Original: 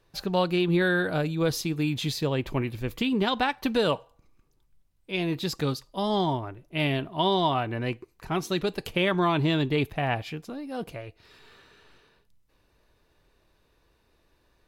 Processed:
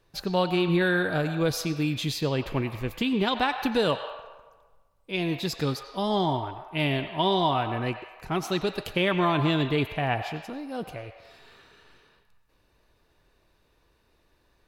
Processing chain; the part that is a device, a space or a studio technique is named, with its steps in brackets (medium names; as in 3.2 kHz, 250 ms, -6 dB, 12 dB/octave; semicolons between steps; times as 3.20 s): filtered reverb send (on a send: high-pass 600 Hz 24 dB/octave + low-pass 5.4 kHz 12 dB/octave + reverberation RT60 1.4 s, pre-delay 85 ms, DRR 7.5 dB)